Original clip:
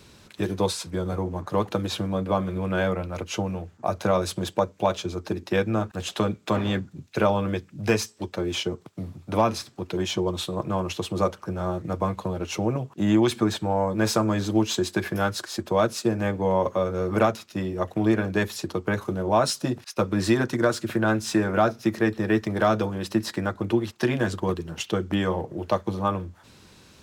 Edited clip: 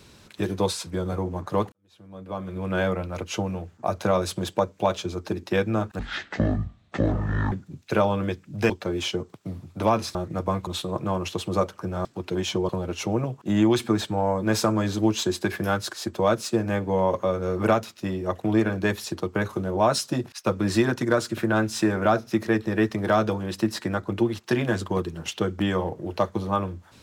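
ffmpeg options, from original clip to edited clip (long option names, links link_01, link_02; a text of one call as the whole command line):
ffmpeg -i in.wav -filter_complex "[0:a]asplit=9[link_01][link_02][link_03][link_04][link_05][link_06][link_07][link_08][link_09];[link_01]atrim=end=1.72,asetpts=PTS-STARTPTS,afade=type=out:start_time=1.716:duration=0.004:curve=hsin[link_10];[link_02]atrim=start=1.72:end=5.994,asetpts=PTS-STARTPTS,afade=type=in:duration=1.04:curve=qua[link_11];[link_03]atrim=start=5.99:end=6.77,asetpts=PTS-STARTPTS,asetrate=22491,aresample=44100,atrim=end_sample=67447,asetpts=PTS-STARTPTS[link_12];[link_04]atrim=start=6.766:end=7.952[link_13];[link_05]atrim=start=8.218:end=9.672[link_14];[link_06]atrim=start=11.688:end=12.212[link_15];[link_07]atrim=start=10.308:end=11.692[link_16];[link_08]atrim=start=9.668:end=10.312[link_17];[link_09]atrim=start=12.208[link_18];[link_10][link_11]concat=n=2:v=0:a=1[link_19];[link_19][link_12]acrossfade=duration=0.004:curve1=hsin:curve2=hsin[link_20];[link_20][link_13]acrossfade=duration=0.004:curve1=hsin:curve2=hsin[link_21];[link_21][link_14]acrossfade=duration=0.004:curve1=hsin:curve2=hsin[link_22];[link_22][link_15]acrossfade=duration=0.004:curve1=hsin:curve2=hsin[link_23];[link_23][link_16]acrossfade=duration=0.004:curve1=hsin:curve2=hsin[link_24];[link_24][link_17]acrossfade=duration=0.004:curve1=hsin:curve2=hsin[link_25];[link_25][link_18]acrossfade=duration=0.004:curve1=hsin:curve2=hsin" out.wav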